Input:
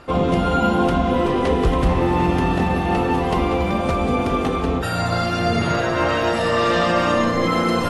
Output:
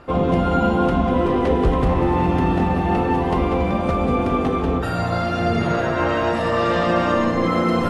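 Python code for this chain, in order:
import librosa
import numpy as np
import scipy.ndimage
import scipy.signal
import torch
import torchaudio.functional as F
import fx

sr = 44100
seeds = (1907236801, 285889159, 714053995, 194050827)

p1 = fx.dmg_crackle(x, sr, seeds[0], per_s=63.0, level_db=-43.0)
p2 = fx.high_shelf(p1, sr, hz=2900.0, db=-9.5)
y = p2 + fx.echo_single(p2, sr, ms=194, db=-10.5, dry=0)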